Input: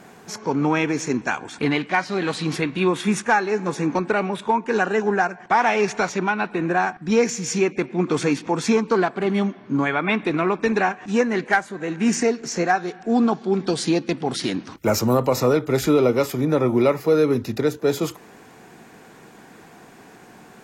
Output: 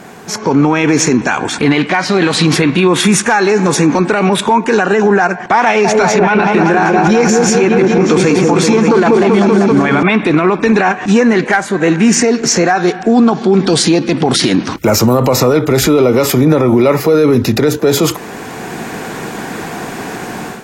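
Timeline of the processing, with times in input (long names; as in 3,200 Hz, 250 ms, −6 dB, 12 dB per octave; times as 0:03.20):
0:03.00–0:04.77: high-shelf EQ 5,200 Hz +7 dB
0:05.65–0:10.03: echo whose low-pass opens from repeat to repeat 193 ms, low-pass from 750 Hz, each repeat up 1 octave, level −3 dB
whole clip: automatic gain control; boost into a limiter +12.5 dB; level −1 dB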